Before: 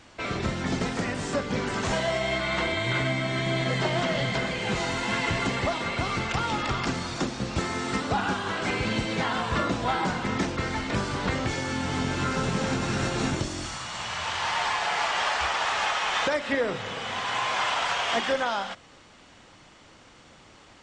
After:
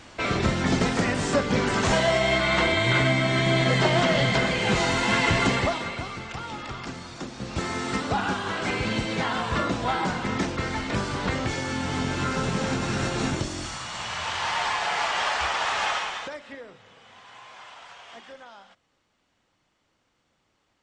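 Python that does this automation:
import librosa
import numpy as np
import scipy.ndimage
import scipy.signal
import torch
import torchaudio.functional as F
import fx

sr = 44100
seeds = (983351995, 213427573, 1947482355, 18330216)

y = fx.gain(x, sr, db=fx.line((5.53, 5.0), (6.15, -7.5), (7.22, -7.5), (7.69, 0.5), (15.96, 0.5), (16.21, -9.0), (16.77, -19.0)))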